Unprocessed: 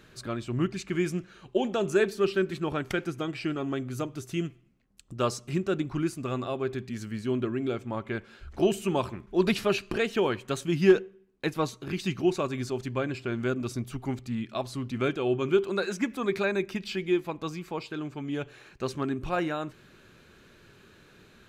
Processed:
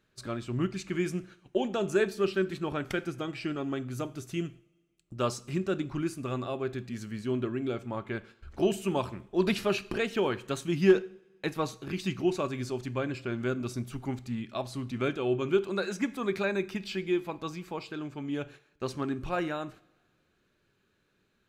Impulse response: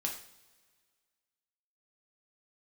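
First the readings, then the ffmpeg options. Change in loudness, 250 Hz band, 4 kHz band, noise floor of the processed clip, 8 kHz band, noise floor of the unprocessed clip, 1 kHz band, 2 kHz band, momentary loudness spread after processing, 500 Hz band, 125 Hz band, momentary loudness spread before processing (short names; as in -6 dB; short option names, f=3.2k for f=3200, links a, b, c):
-2.0 dB, -2.0 dB, -2.0 dB, -73 dBFS, -2.0 dB, -57 dBFS, -2.5 dB, -2.0 dB, 10 LU, -2.5 dB, -2.0 dB, 10 LU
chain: -filter_complex "[0:a]agate=range=-15dB:threshold=-46dB:ratio=16:detection=peak,asplit=2[a][b];[1:a]atrim=start_sample=2205[c];[b][c]afir=irnorm=-1:irlink=0,volume=-12.5dB[d];[a][d]amix=inputs=2:normalize=0,volume=-4dB"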